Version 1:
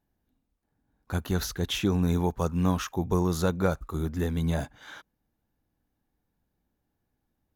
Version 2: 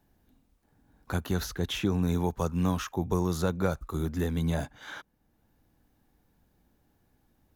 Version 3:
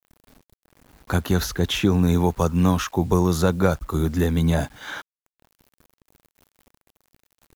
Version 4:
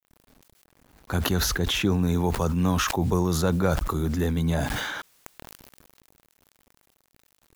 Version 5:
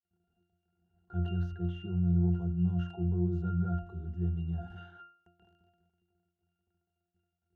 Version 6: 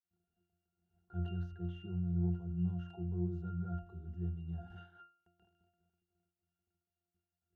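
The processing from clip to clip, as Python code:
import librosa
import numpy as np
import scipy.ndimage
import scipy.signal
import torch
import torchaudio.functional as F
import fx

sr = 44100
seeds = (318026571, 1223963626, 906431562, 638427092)

y1 = fx.band_squash(x, sr, depth_pct=40)
y1 = F.gain(torch.from_numpy(y1), -2.0).numpy()
y2 = fx.quant_dither(y1, sr, seeds[0], bits=10, dither='none')
y2 = F.gain(torch.from_numpy(y2), 8.5).numpy()
y3 = fx.sustainer(y2, sr, db_per_s=25.0)
y3 = F.gain(torch.from_numpy(y3), -5.0).numpy()
y4 = fx.octave_resonator(y3, sr, note='F', decay_s=0.44)
y5 = fx.am_noise(y4, sr, seeds[1], hz=5.7, depth_pct=60)
y5 = F.gain(torch.from_numpy(y5), -4.0).numpy()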